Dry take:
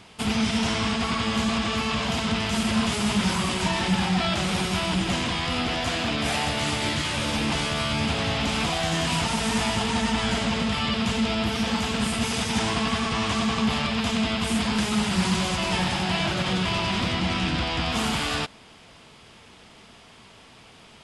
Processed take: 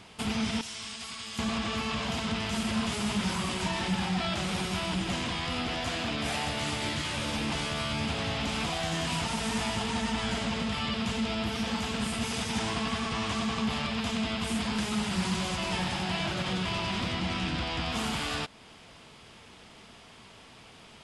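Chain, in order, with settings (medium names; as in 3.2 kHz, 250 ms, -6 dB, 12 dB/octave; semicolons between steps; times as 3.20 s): 0.61–1.39 s: pre-emphasis filter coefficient 0.9; in parallel at 0 dB: compression, threshold -35 dBFS, peak gain reduction 15.5 dB; on the sum: trim -8 dB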